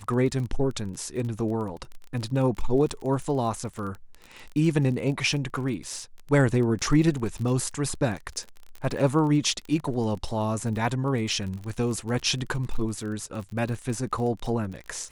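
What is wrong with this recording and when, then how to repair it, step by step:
crackle 31/s -32 dBFS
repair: de-click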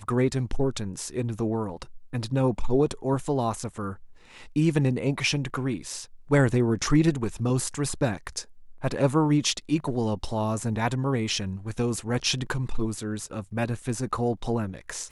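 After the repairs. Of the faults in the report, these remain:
none

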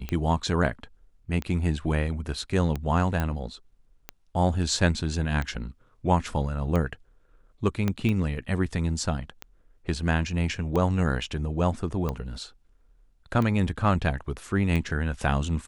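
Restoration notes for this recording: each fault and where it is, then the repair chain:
tick 45 rpm -17 dBFS
3.2 pop -15 dBFS
7.88 pop -13 dBFS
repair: de-click

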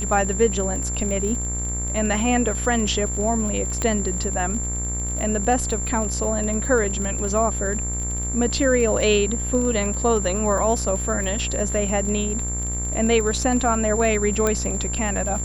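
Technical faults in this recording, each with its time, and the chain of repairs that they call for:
buzz 60 Hz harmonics 40 -28 dBFS
crackle 37/s -28 dBFS
tone 7300 Hz -27 dBFS
3.82 pop -10 dBFS
14.47 pop -8 dBFS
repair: de-click; de-hum 60 Hz, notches 40; notch 7300 Hz, Q 30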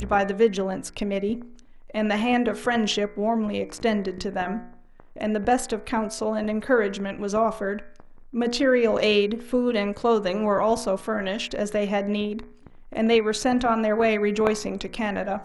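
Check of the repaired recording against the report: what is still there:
14.47 pop

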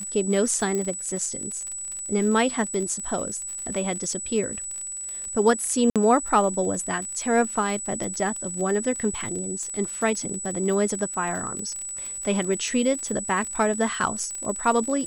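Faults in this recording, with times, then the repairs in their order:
crackle 44/s -30 dBFS
tone 7900 Hz -31 dBFS
0.75 pop -16 dBFS
5.9–5.96 gap 57 ms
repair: de-click; notch 7900 Hz, Q 30; interpolate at 5.9, 57 ms

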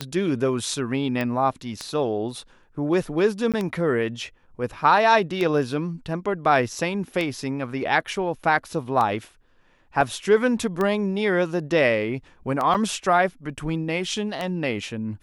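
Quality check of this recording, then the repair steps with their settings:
tick 33 1/3 rpm -13 dBFS
1.21 pop -15 dBFS
3.52–3.54 gap 17 ms
10.01 gap 2.4 ms
12.74–12.75 gap 6.9 ms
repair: de-click; interpolate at 3.52, 17 ms; interpolate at 10.01, 2.4 ms; interpolate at 12.74, 6.9 ms

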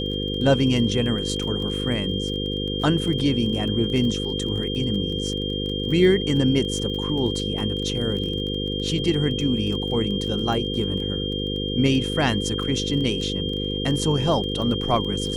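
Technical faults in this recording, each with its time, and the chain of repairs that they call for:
buzz 50 Hz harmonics 10 -28 dBFS
crackle 28/s -30 dBFS
tone 3200 Hz -29 dBFS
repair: de-click; notch 3200 Hz, Q 30; de-hum 50 Hz, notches 10

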